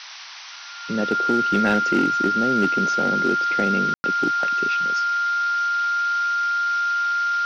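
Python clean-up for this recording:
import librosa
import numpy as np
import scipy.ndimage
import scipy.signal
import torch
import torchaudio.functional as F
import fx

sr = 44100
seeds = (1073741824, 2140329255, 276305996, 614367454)

y = fx.fix_declip(x, sr, threshold_db=-12.0)
y = fx.notch(y, sr, hz=1400.0, q=30.0)
y = fx.fix_ambience(y, sr, seeds[0], print_start_s=0.0, print_end_s=0.5, start_s=3.94, end_s=4.04)
y = fx.noise_reduce(y, sr, print_start_s=0.0, print_end_s=0.5, reduce_db=30.0)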